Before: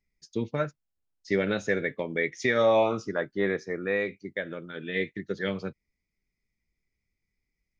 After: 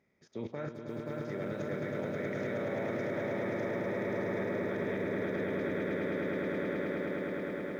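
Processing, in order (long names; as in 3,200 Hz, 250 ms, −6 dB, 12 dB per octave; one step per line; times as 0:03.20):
compressor on every frequency bin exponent 0.6
output level in coarse steps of 18 dB
high-pass filter 95 Hz 6 dB per octave
high-shelf EQ 2,100 Hz −12 dB
echo that builds up and dies away 106 ms, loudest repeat 8, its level −7 dB
brickwall limiter −28.5 dBFS, peak gain reduction 7.5 dB
feedback echo at a low word length 530 ms, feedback 35%, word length 10 bits, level −9 dB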